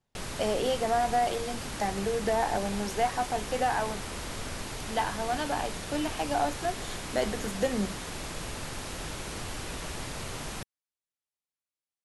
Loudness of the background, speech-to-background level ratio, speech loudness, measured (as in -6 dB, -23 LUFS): -37.0 LUFS, 6.0 dB, -31.0 LUFS